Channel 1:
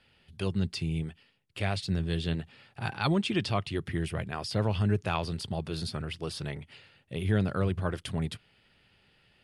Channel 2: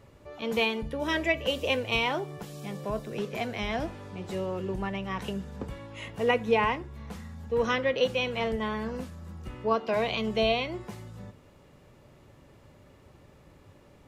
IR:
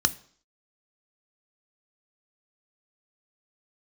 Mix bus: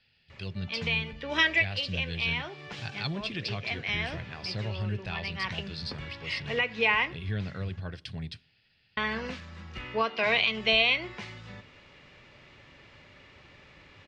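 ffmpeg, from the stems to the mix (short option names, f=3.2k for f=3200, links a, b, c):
-filter_complex "[0:a]volume=-8dB,asplit=3[a][b][c];[b]volume=-18dB[d];[1:a]equalizer=f=2.2k:w=0.86:g=12.5,alimiter=limit=-14dB:level=0:latency=1:release=427,adelay=300,volume=-3dB,asplit=3[e][f][g];[e]atrim=end=7.79,asetpts=PTS-STARTPTS,afade=t=out:st=7.786:d=0.004:c=hsin[h];[f]atrim=start=7.79:end=8.97,asetpts=PTS-STARTPTS,volume=0[i];[g]atrim=start=8.97,asetpts=PTS-STARTPTS,afade=t=in:d=0.004:c=hsin[j];[h][i][j]concat=n=3:v=0:a=1[k];[c]apad=whole_len=633851[l];[k][l]sidechaincompress=threshold=-43dB:ratio=4:attack=35:release=596[m];[2:a]atrim=start_sample=2205[n];[d][n]afir=irnorm=-1:irlink=0[o];[a][m][o]amix=inputs=3:normalize=0,lowpass=f=5k:w=0.5412,lowpass=f=5k:w=1.3066,crystalizer=i=3.5:c=0"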